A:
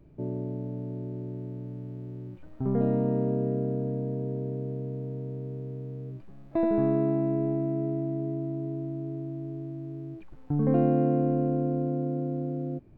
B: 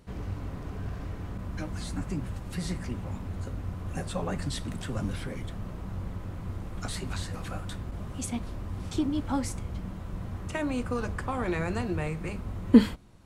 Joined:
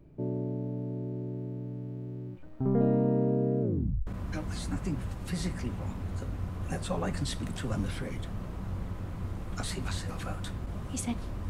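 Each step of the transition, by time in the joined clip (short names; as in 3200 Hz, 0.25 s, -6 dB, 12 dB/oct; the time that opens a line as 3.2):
A
3.61 tape stop 0.46 s
4.07 switch to B from 1.32 s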